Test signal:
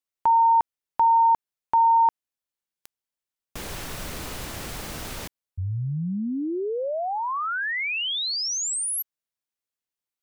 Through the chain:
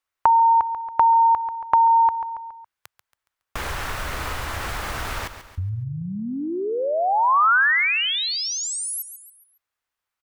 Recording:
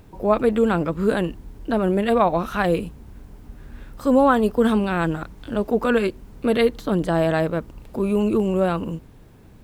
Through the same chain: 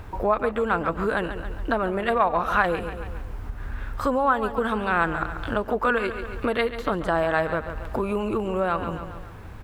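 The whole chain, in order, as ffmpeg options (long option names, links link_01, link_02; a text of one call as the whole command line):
ffmpeg -i in.wav -filter_complex "[0:a]lowshelf=frequency=120:width_type=q:width=1.5:gain=7.5,asplit=2[link_01][link_02];[link_02]aecho=0:1:139|278|417|556:0.224|0.0918|0.0376|0.0154[link_03];[link_01][link_03]amix=inputs=2:normalize=0,acompressor=threshold=-26dB:ratio=6:attack=9.5:release=634:knee=6:detection=peak,equalizer=frequency=1300:width_type=o:width=2.3:gain=13,volume=1dB" out.wav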